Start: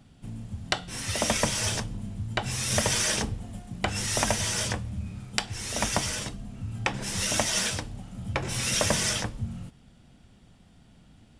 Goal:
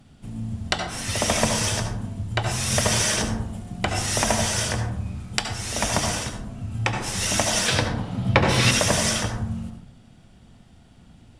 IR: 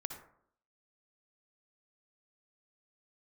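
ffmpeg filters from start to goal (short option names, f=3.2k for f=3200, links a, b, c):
-filter_complex "[0:a]asettb=1/sr,asplit=3[a][b][c];[a]atrim=end=7.684[d];[b]atrim=start=7.68:end=8.71,asetpts=PTS-STARTPTS,afade=t=in:d=0.004:c=qsin,afade=t=out:st=1.026:d=0.004:c=qsin,equalizer=f=125:t=o:w=1:g=7,equalizer=f=250:t=o:w=1:g=6,equalizer=f=500:t=o:w=1:g=7,equalizer=f=1k:t=o:w=1:g=6,equalizer=f=2k:t=o:w=1:g=6,equalizer=f=4k:t=o:w=1:g=9,equalizer=f=8k:t=o:w=1:g=-4[e];[c]atrim=start=8.706[f];[d][e]acrossfade=d=0.004:c1=hsin:c2=qsin[g];[g][f]acrossfade=d=0.004:c1=qsin:c2=hsin[h];[1:a]atrim=start_sample=2205,asetrate=36603,aresample=44100[i];[h][i]afir=irnorm=-1:irlink=0,volume=4.5dB"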